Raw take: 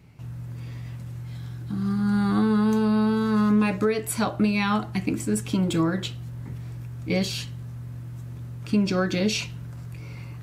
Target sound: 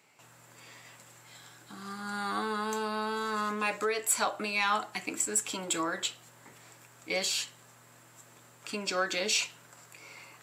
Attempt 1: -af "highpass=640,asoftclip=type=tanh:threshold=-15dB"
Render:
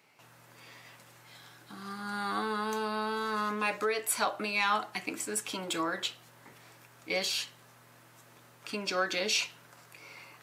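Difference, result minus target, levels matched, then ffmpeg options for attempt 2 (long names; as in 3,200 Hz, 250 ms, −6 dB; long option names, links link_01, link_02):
8,000 Hz band −4.5 dB
-af "highpass=640,equalizer=frequency=7500:width_type=o:width=0.2:gain=13,asoftclip=type=tanh:threshold=-15dB"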